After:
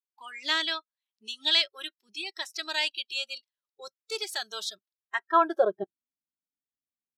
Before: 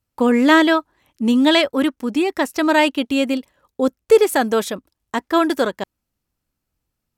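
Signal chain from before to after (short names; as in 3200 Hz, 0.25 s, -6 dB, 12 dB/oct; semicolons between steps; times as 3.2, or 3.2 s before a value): spectral noise reduction 23 dB; band-pass sweep 4300 Hz -> 260 Hz, 4.84–5.94; gain +1.5 dB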